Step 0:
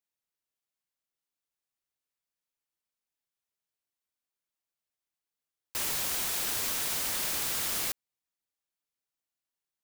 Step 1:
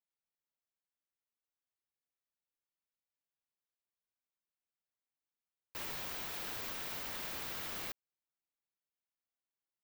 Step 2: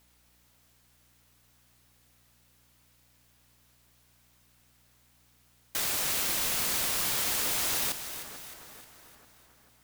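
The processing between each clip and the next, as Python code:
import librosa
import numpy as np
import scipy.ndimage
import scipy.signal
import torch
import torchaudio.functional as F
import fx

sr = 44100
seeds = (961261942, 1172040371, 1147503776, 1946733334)

y1 = fx.peak_eq(x, sr, hz=9600.0, db=-14.5, octaves=1.6)
y1 = y1 * librosa.db_to_amplitude(-6.0)
y2 = fx.fold_sine(y1, sr, drive_db=19, ceiling_db=-29.0)
y2 = fx.add_hum(y2, sr, base_hz=60, snr_db=33)
y2 = fx.echo_split(y2, sr, split_hz=1900.0, low_ms=442, high_ms=308, feedback_pct=52, wet_db=-10.5)
y2 = y2 * librosa.db_to_amplitude(6.0)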